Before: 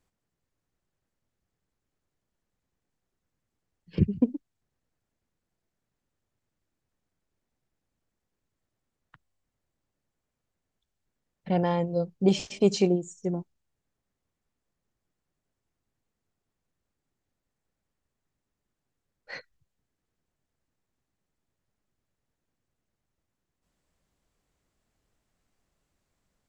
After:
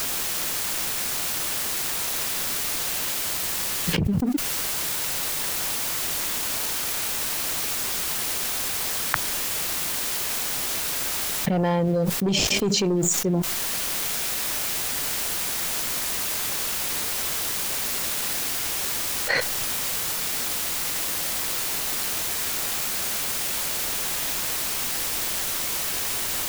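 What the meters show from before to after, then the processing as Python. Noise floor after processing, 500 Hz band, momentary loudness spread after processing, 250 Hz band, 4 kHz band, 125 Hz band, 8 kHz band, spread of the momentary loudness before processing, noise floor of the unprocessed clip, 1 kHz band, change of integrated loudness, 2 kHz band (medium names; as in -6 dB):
-28 dBFS, +2.0 dB, 2 LU, +3.0 dB, +20.5 dB, +4.5 dB, +27.5 dB, 19 LU, -85 dBFS, +10.5 dB, +3.5 dB, +21.0 dB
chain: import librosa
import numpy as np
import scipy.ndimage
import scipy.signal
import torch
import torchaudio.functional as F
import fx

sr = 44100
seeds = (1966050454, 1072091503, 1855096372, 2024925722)

p1 = fx.leveller(x, sr, passes=2)
p2 = fx.quant_dither(p1, sr, seeds[0], bits=8, dither='triangular')
p3 = p1 + (p2 * librosa.db_to_amplitude(-8.0))
p4 = fx.env_flatten(p3, sr, amount_pct=100)
y = p4 * librosa.db_to_amplitude(-11.0)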